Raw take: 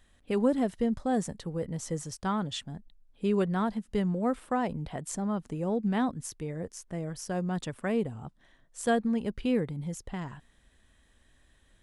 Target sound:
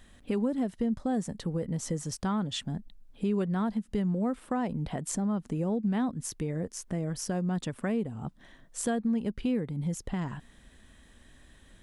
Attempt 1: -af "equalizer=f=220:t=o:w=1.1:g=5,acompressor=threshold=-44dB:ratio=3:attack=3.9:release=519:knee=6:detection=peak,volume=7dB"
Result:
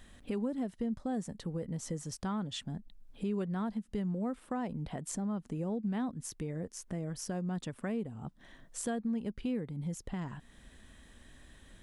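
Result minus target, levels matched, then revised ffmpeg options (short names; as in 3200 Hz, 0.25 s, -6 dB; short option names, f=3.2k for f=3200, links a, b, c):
compressor: peak gain reduction +5.5 dB
-af "equalizer=f=220:t=o:w=1.1:g=5,acompressor=threshold=-35.5dB:ratio=3:attack=3.9:release=519:knee=6:detection=peak,volume=7dB"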